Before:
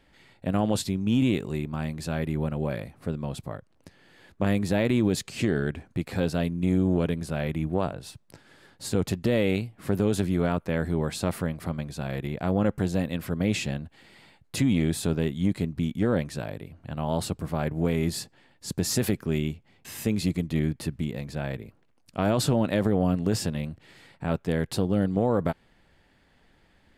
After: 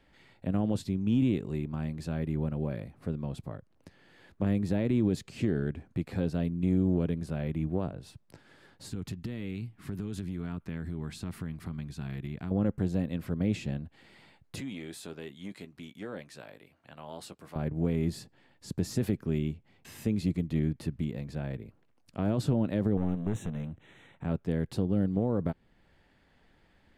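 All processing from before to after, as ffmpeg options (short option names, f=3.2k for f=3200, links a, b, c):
-filter_complex "[0:a]asettb=1/sr,asplit=3[a][b][c];[a]atrim=end=8.904[d];[b]atrim=start=8.9:end=12.51,asetpts=PTS-STARTPTS,afade=t=in:d=0.004:c=qsin,afade=t=out:st=3.606:d=0.004:c=qsin,equalizer=f=580:t=o:w=1.2:g=-10,bandreject=f=540:w=7,acompressor=threshold=-28dB:ratio=10:attack=3.2:release=140:knee=1:detection=peak[e];[c]atrim=start=12.506[f];[d][e]acrossfade=d=0.004:c1=hsin:c2=qsin[g];[g][f]acrossfade=d=0.004:c1=qsin:c2=hsin,asettb=1/sr,asplit=3[h][i][j];[h]atrim=end=14.604[k];[i]atrim=start=14.6:end=17.56,asetpts=PTS-STARTPTS,afade=t=in:d=0.004:c=qsin,afade=t=out:st=2.956:d=0.004:c=qsin,highpass=f=1.2k:p=1,asplit=2[l][m];[m]adelay=15,volume=-12dB[n];[l][n]amix=inputs=2:normalize=0,atrim=end_sample=130536[o];[j]atrim=start=17.556[p];[k][o]acrossfade=d=0.004:c1=hsin:c2=qsin[q];[q][p]acrossfade=d=0.004:c1=qsin:c2=hsin,asettb=1/sr,asplit=3[r][s][t];[r]atrim=end=22.974[u];[s]atrim=start=22.97:end=24.25,asetpts=PTS-STARTPTS,afade=t=in:d=0.004:c=qsin,afade=t=out:st=1.276:d=0.004:c=qsin,highshelf=f=11k:g=-8.5,aeval=exprs='clip(val(0),-1,0.0335)':c=same,asuperstop=centerf=4800:order=12:qfactor=2.8[v];[t]atrim=start=24.246[w];[u][v]acrossfade=d=0.004:c1=hsin:c2=qsin[x];[x][w]acrossfade=d=0.004:c1=qsin:c2=hsin,highshelf=f=5.5k:g=-6,acrossover=split=430[y][z];[z]acompressor=threshold=-52dB:ratio=1.5[aa];[y][aa]amix=inputs=2:normalize=0,volume=-2.5dB"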